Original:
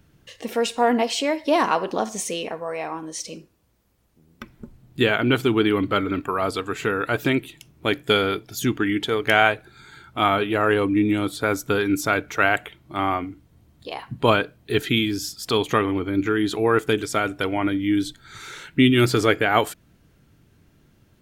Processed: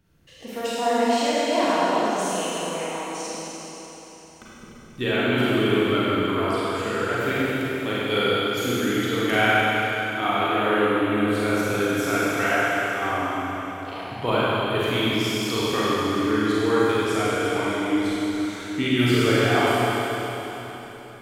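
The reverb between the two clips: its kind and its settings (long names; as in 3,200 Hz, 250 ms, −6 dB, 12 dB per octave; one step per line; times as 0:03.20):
four-comb reverb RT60 3.9 s, combs from 33 ms, DRR −9 dB
level −9.5 dB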